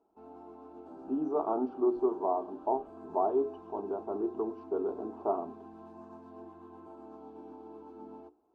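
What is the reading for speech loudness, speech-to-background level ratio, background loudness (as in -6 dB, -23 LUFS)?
-33.0 LUFS, 16.5 dB, -49.5 LUFS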